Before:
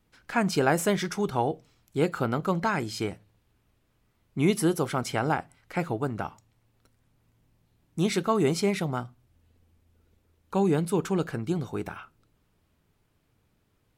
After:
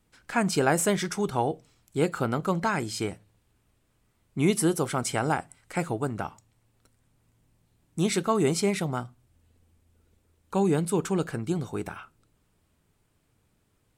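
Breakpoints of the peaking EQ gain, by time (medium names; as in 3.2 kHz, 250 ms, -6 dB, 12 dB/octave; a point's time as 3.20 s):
peaking EQ 8.4 kHz 0.57 oct
4.82 s +7.5 dB
5.27 s +14.5 dB
5.81 s +14.5 dB
6.24 s +7.5 dB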